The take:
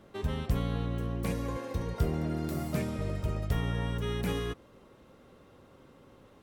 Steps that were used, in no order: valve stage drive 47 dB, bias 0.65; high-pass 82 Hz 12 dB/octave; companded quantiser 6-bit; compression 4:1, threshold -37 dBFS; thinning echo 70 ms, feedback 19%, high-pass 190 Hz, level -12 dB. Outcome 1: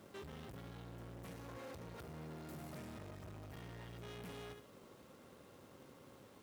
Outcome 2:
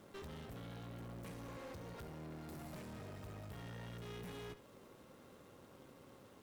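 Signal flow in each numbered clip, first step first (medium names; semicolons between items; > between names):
thinning echo > compression > valve stage > companded quantiser > high-pass; companded quantiser > compression > high-pass > valve stage > thinning echo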